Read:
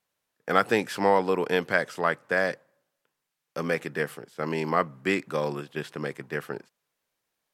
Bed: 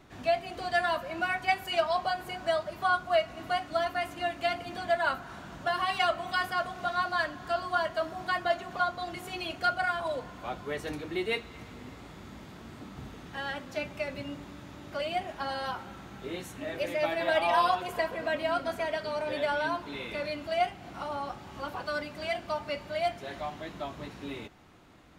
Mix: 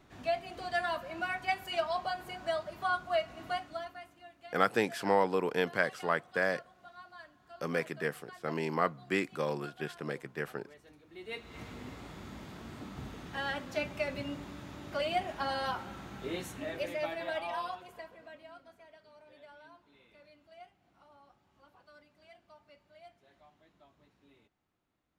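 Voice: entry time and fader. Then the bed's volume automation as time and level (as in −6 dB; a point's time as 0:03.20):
4.05 s, −5.5 dB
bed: 0:03.54 −5 dB
0:04.23 −22 dB
0:11.05 −22 dB
0:11.59 0 dB
0:16.48 0 dB
0:18.77 −25.5 dB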